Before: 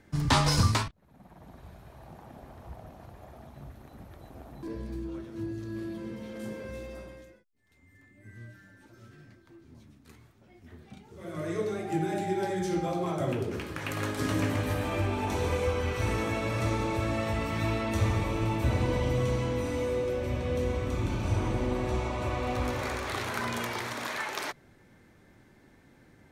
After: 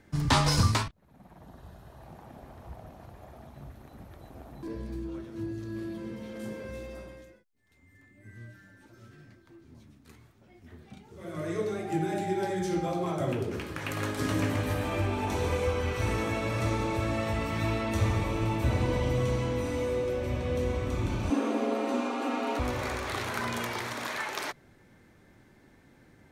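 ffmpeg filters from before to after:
ffmpeg -i in.wav -filter_complex "[0:a]asettb=1/sr,asplit=3[link_01][link_02][link_03];[link_01]atrim=end=1.434[link_04];[link_02]atrim=start=1.43:end=2,asetpts=PTS-STARTPTS,afade=type=in:duration=0.004:curve=qsin,afade=type=out:start_time=0.566:duration=0.004:curve=qsin,bandreject=frequency=2300:width=5.5[link_05];[link_03]atrim=start=1.996[link_06];[link_04][link_05]acrossfade=duration=0.004:curve1=hsin:curve2=qsin[link_07];[link_07][link_06]acrossfade=duration=0.004:curve1=qsin:curve2=hsin,asettb=1/sr,asplit=3[link_08][link_09][link_10];[link_08]atrim=end=21.304[link_11];[link_09]atrim=start=21.3:end=22.59,asetpts=PTS-STARTPTS,afade=type=in:duration=0.004:curve=qsin,afade=type=out:start_time=1.286:duration=0.004:curve=qsin,afreqshift=180[link_12];[link_10]atrim=start=22.586[link_13];[link_11][link_12]acrossfade=duration=0.004:curve1=hsin:curve2=qsin[link_14];[link_14][link_13]acrossfade=duration=0.004:curve1=qsin:curve2=hsin" out.wav

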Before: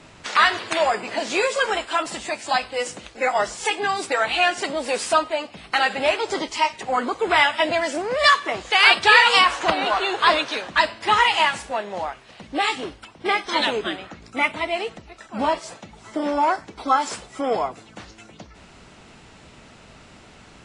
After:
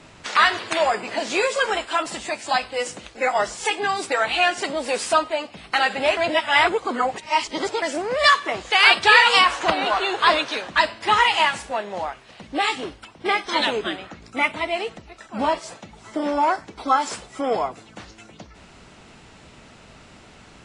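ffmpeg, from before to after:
ffmpeg -i in.wav -filter_complex "[0:a]asplit=3[link_01][link_02][link_03];[link_01]atrim=end=6.172[link_04];[link_02]atrim=start=6.168:end=7.822,asetpts=PTS-STARTPTS,areverse[link_05];[link_03]atrim=start=7.818[link_06];[link_04][link_05]acrossfade=duration=0.004:curve1=hsin:curve2=hsin[link_07];[link_07][link_06]acrossfade=duration=0.004:curve1=hsin:curve2=hsin" out.wav

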